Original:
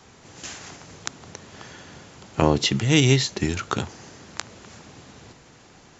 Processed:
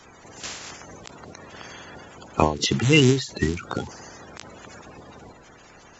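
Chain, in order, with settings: coarse spectral quantiser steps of 30 dB; endings held to a fixed fall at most 130 dB/s; trim +2.5 dB

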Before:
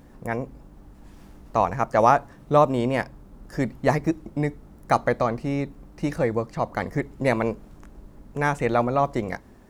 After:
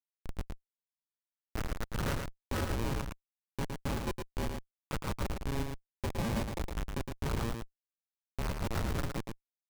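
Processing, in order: 6.10–6.69 s: bass shelf 310 Hz +8.5 dB; ring modulator 690 Hz; Schmitt trigger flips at -21.5 dBFS; on a send: delay 112 ms -5 dB; on the sum: trim -4.5 dB

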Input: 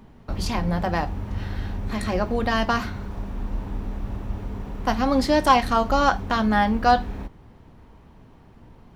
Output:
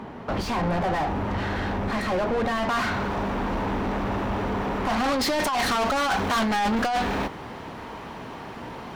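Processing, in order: compressor with a negative ratio -22 dBFS, ratio -0.5; overdrive pedal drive 34 dB, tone 1.1 kHz, clips at -8.5 dBFS, from 2.69 s tone 2 kHz, from 5.04 s tone 5.4 kHz; trim -8 dB

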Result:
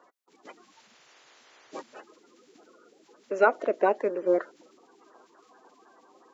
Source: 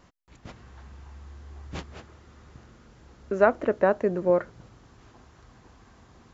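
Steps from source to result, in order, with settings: coarse spectral quantiser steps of 30 dB; high-pass 320 Hz 24 dB/octave

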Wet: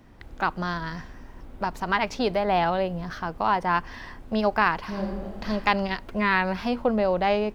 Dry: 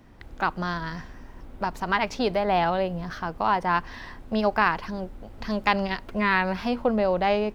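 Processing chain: 3.69–4.23 s: band-stop 3.9 kHz, Q 13; 4.80–5.48 s: reverb throw, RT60 1.3 s, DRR -1 dB

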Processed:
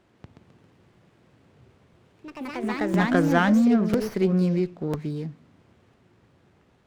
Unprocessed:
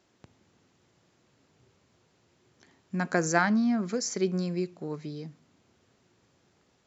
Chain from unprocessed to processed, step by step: low-pass 3.8 kHz 12 dB/octave; bass shelf 150 Hz +7 dB; in parallel at -1 dB: peak limiter -22 dBFS, peak gain reduction 14 dB; on the sum: ever faster or slower copies 166 ms, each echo +3 st, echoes 3, each echo -6 dB; crackling interface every 1.00 s, samples 256, repeat, from 0.93 s; sliding maximum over 5 samples

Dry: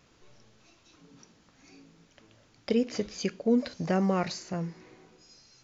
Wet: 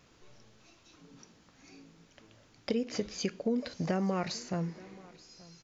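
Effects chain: compression 6:1, threshold -27 dBFS, peak gain reduction 8 dB; delay 879 ms -22 dB

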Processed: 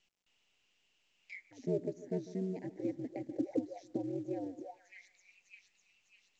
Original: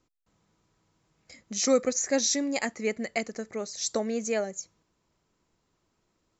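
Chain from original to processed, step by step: Chebyshev band-stop 800–1800 Hz, order 2; two-band feedback delay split 2.2 kHz, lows 148 ms, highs 602 ms, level -16 dB; ring modulator 95 Hz; auto-wah 250–2900 Hz, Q 9, down, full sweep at -32.5 dBFS; trim +12.5 dB; µ-law 128 kbps 16 kHz

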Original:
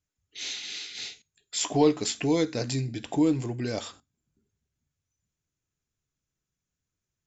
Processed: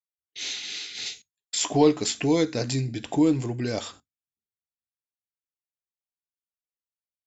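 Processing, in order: expander -47 dBFS; 1.06–1.55 s: treble shelf 4.2 kHz +9.5 dB; trim +2.5 dB

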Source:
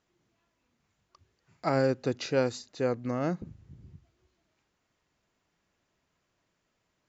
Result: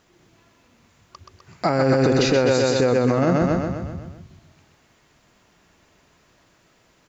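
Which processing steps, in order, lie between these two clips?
feedback delay 127 ms, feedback 55%, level -4 dB; 1.89–2.44 s: added noise brown -59 dBFS; loudness maximiser +25 dB; trim -8.5 dB

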